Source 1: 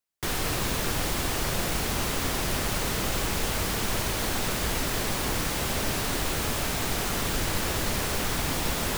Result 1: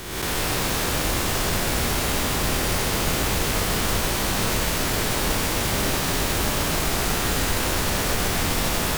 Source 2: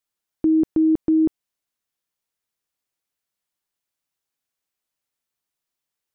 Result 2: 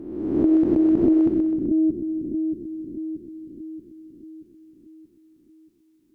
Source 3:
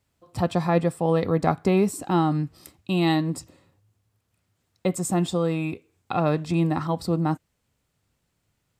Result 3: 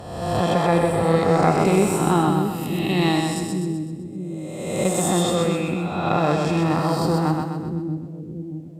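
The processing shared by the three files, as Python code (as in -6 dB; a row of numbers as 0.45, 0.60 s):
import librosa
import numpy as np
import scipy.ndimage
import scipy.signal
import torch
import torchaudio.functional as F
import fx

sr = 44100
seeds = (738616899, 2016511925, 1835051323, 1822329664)

y = fx.spec_swells(x, sr, rise_s=1.25)
y = fx.echo_split(y, sr, split_hz=370.0, low_ms=630, high_ms=127, feedback_pct=52, wet_db=-3.5)
y = fx.cheby_harmonics(y, sr, harmonics=(2,), levels_db=(-17,), full_scale_db=-3.0)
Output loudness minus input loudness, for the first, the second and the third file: +5.0, -1.5, +3.0 LU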